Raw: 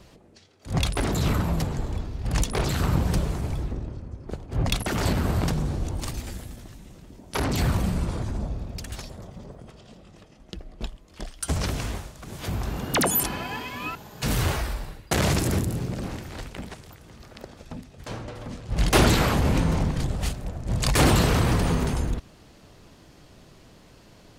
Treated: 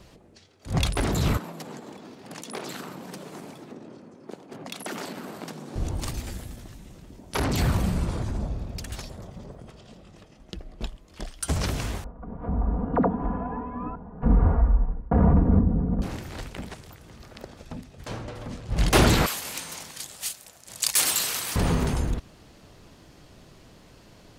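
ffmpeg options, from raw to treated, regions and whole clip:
ffmpeg -i in.wav -filter_complex "[0:a]asettb=1/sr,asplit=3[link_01][link_02][link_03];[link_01]atrim=end=1.374[link_04];[link_02]atrim=start=1.37:end=5.76,asetpts=PTS-STARTPTS,afade=type=in:duration=0.004:curve=qsin,afade=type=out:start_time=4.386:duration=0.004:curve=qsin,acompressor=threshold=-29dB:ratio=6:attack=3.2:release=140:knee=1:detection=peak,highpass=frequency=200:width=0.5412,highpass=frequency=200:width=1.3066[link_05];[link_03]atrim=start=5.756[link_06];[link_04][link_05]acrossfade=duration=0.004:curve1=hsin:curve2=qsin[link_07];[link_07][link_06]acrossfade=duration=0.004:curve1=qsin:curve2=hsin,asettb=1/sr,asplit=3[link_08][link_09][link_10];[link_08]atrim=end=12.044[link_11];[link_09]atrim=start=12.04:end=16.02,asetpts=PTS-STARTPTS,afade=type=in:duration=0.004:curve=qsin,afade=type=out:start_time=3.976:duration=0.004:curve=qsin,lowpass=frequency=1100:width=0.5412,lowpass=frequency=1100:width=1.3066,asubboost=boost=2.5:cutoff=240,aecho=1:1:4.2:0.82,atrim=end_sample=175518[link_12];[link_10]atrim=start=16.016[link_13];[link_11][link_12]acrossfade=duration=0.004:curve1=hsin:curve2=qsin[link_14];[link_14][link_13]acrossfade=duration=0.004:curve1=qsin:curve2=hsin,asettb=1/sr,asplit=3[link_15][link_16][link_17];[link_15]atrim=end=19.264[link_18];[link_16]atrim=start=19.26:end=21.56,asetpts=PTS-STARTPTS,afade=type=in:duration=0.004:curve=qsin,afade=type=out:start_time=2.296:duration=0.004:curve=qsin,aderivative,acontrast=67[link_19];[link_17]atrim=start=21.556[link_20];[link_18][link_19]acrossfade=duration=0.004:curve1=hsin:curve2=qsin[link_21];[link_21][link_20]acrossfade=duration=0.004:curve1=qsin:curve2=hsin" out.wav

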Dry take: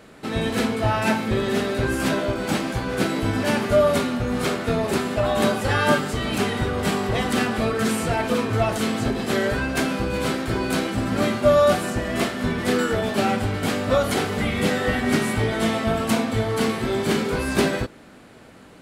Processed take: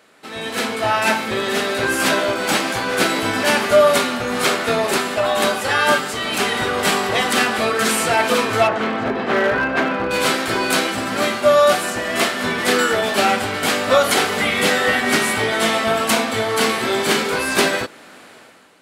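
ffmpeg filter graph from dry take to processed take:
ffmpeg -i in.wav -filter_complex "[0:a]asettb=1/sr,asplit=3[link_01][link_02][link_03];[link_01]atrim=end=8.674[link_04];[link_02]atrim=start=8.67:end=10.11,asetpts=PTS-STARTPTS,afade=type=in:duration=0.004:curve=qsin,afade=type=out:start_time=1.436:duration=0.004:curve=qsin,lowpass=1800,asoftclip=type=hard:threshold=-18dB[link_05];[link_03]atrim=start=10.106[link_06];[link_04][link_05]acrossfade=duration=0.004:curve1=hsin:curve2=qsin[link_07];[link_07][link_06]acrossfade=duration=0.004:curve1=qsin:curve2=hsin,highpass=frequency=830:poles=1,dynaudnorm=framelen=120:gausssize=9:maxgain=14dB,volume=-1dB" out.wav

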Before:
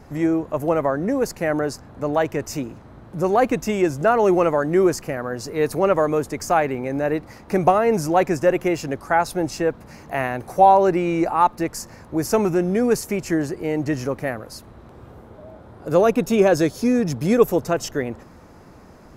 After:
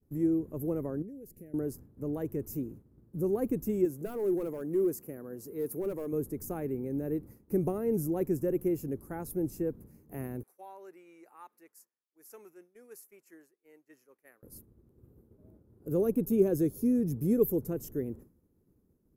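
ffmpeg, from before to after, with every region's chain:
ffmpeg -i in.wav -filter_complex "[0:a]asettb=1/sr,asplit=3[link_01][link_02][link_03];[link_01]atrim=end=1.024[link_04];[link_02]atrim=start=1.02:end=1.54,asetpts=PTS-STARTPTS,afade=type=in:duration=0.004:curve=qsin,afade=type=out:start_time=0.516:duration=0.004:curve=qsin,asuperstop=centerf=1100:order=4:qfactor=1,acompressor=threshold=-34dB:ratio=6:attack=3.2:release=140:knee=1:detection=peak[link_05];[link_03]atrim=start=1.536[link_06];[link_04][link_05]acrossfade=duration=0.004:curve1=hsin:curve2=qsin[link_07];[link_07][link_06]acrossfade=duration=0.004:curve1=qsin:curve2=hsin,asettb=1/sr,asplit=3[link_08][link_09][link_10];[link_08]atrim=end=3.854[link_11];[link_09]atrim=start=3.85:end=6.13,asetpts=PTS-STARTPTS,afade=type=in:duration=0.004:curve=qsin,afade=type=out:start_time=2.276:duration=0.004:curve=qsin,highpass=frequency=330:poles=1,asoftclip=type=hard:threshold=-15.5dB[link_12];[link_10]atrim=start=6.126[link_13];[link_11][link_12]acrossfade=duration=0.004:curve1=hsin:curve2=qsin[link_14];[link_14][link_13]acrossfade=duration=0.004:curve1=qsin:curve2=hsin,asettb=1/sr,asplit=3[link_15][link_16][link_17];[link_15]atrim=end=10.434[link_18];[link_16]atrim=start=10.43:end=14.43,asetpts=PTS-STARTPTS,afade=type=in:duration=0.004:curve=qsin,afade=type=out:start_time=3.996:duration=0.004:curve=qsin,highpass=1500,aemphasis=mode=reproduction:type=50fm[link_19];[link_17]atrim=start=14.426[link_20];[link_18][link_19]acrossfade=duration=0.004:curve1=hsin:curve2=qsin[link_21];[link_21][link_20]acrossfade=duration=0.004:curve1=qsin:curve2=hsin,agate=range=-33dB:threshold=-35dB:ratio=3:detection=peak,firequalizer=gain_entry='entry(400,0);entry(660,-18);entry(3100,-21);entry(4500,-20);entry(12000,8)':delay=0.05:min_phase=1,volume=-7.5dB" out.wav

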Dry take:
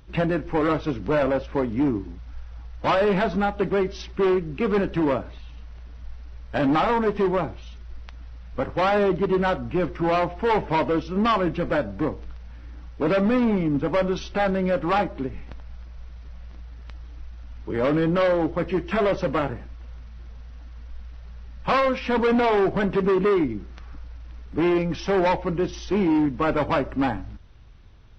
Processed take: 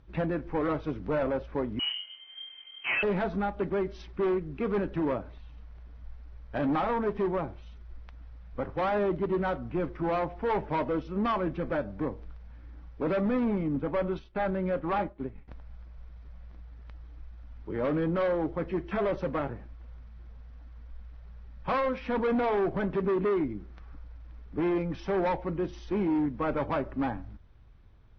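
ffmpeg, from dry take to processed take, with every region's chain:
ffmpeg -i in.wav -filter_complex "[0:a]asettb=1/sr,asplit=3[link_01][link_02][link_03];[link_01]atrim=end=1.794[link_04];[link_02]atrim=start=1.79:end=3.03,asetpts=PTS-STARTPTS,afade=type=in:duration=0.004:curve=qsin,afade=type=out:start_time=1.236:duration=0.004:curve=qsin,aeval=exprs='val(0)+0.00251*sin(2*PI*1100*n/s)':channel_layout=same,lowpass=frequency=2700:width_type=q:width=0.5098,lowpass=frequency=2700:width_type=q:width=0.6013,lowpass=frequency=2700:width_type=q:width=0.9,lowpass=frequency=2700:width_type=q:width=2.563,afreqshift=-3200,asplit=2[link_05][link_06];[link_06]adelay=33,volume=-3dB[link_07];[link_05][link_07]amix=inputs=2:normalize=0,atrim=end_sample=54684[link_08];[link_03]atrim=start=3.026[link_09];[link_04][link_08]acrossfade=duration=0.004:curve1=hsin:curve2=qsin[link_10];[link_10][link_09]acrossfade=duration=0.004:curve1=qsin:curve2=hsin,asettb=1/sr,asplit=3[link_11][link_12][link_13];[link_11]atrim=end=13.764[link_14];[link_12]atrim=start=13.76:end=15.48,asetpts=PTS-STARTPTS,afade=type=in:duration=0.004:curve=qsin,afade=type=out:start_time=1.716:duration=0.004:curve=qsin,lowpass=4700,agate=range=-33dB:threshold=-29dB:ratio=3:release=100:detection=peak[link_15];[link_13]atrim=start=15.476[link_16];[link_14][link_15]acrossfade=duration=0.004:curve1=hsin:curve2=qsin[link_17];[link_17][link_16]acrossfade=duration=0.004:curve1=qsin:curve2=hsin,aemphasis=mode=reproduction:type=75fm,bandreject=frequency=2800:width=22,volume=-7.5dB" out.wav

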